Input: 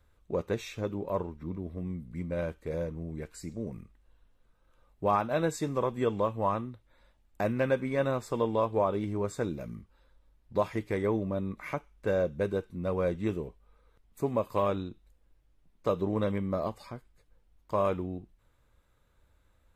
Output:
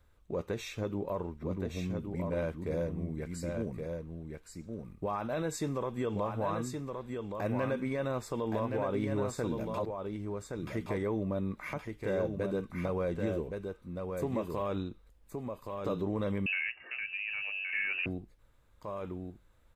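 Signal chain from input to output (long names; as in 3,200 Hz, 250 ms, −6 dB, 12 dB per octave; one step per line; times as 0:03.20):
0:09.74–0:10.67: reverse
brickwall limiter −25 dBFS, peak gain reduction 10 dB
single-tap delay 1,120 ms −5 dB
0:16.46–0:18.06: voice inversion scrambler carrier 2,800 Hz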